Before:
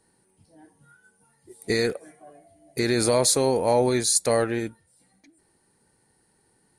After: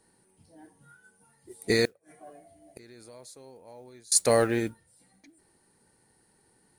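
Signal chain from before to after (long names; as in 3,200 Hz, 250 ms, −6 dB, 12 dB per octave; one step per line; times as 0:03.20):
mains-hum notches 50/100/150 Hz
0:01.85–0:04.12: gate with flip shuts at −28 dBFS, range −28 dB
noise that follows the level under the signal 31 dB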